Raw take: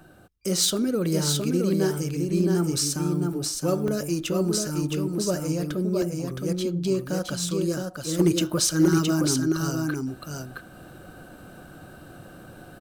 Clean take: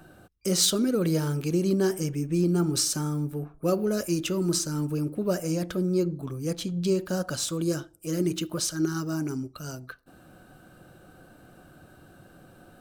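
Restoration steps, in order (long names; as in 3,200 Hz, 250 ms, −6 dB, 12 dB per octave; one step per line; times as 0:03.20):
clipped peaks rebuilt −11.5 dBFS
repair the gap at 0:00.77/0:03.88/0:06.02, 1.8 ms
echo removal 667 ms −4 dB
level correction −6 dB, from 0:08.19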